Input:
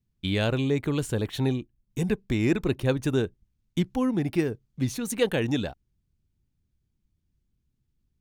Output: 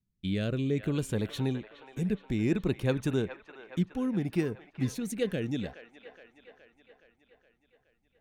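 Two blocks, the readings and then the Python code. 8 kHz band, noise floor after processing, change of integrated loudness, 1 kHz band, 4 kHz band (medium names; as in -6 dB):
-7.0 dB, -75 dBFS, -4.5 dB, -7.5 dB, -7.5 dB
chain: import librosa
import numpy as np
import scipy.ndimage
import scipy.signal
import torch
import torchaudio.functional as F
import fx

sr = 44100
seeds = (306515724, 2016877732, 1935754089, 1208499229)

y = fx.peak_eq(x, sr, hz=190.0, db=6.0, octaves=0.41)
y = fx.rotary(y, sr, hz=0.6)
y = fx.echo_wet_bandpass(y, sr, ms=419, feedback_pct=60, hz=1300.0, wet_db=-8)
y = y * librosa.db_to_amplitude(-4.0)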